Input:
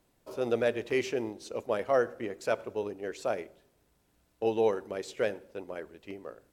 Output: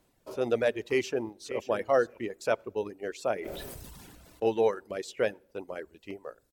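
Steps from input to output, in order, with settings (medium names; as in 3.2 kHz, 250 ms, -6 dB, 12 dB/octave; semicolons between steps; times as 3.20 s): 0.87–1.60 s: echo throw 580 ms, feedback 10%, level -11.5 dB; reverb removal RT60 0.81 s; 3.34–4.46 s: decay stretcher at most 22 dB/s; trim +2 dB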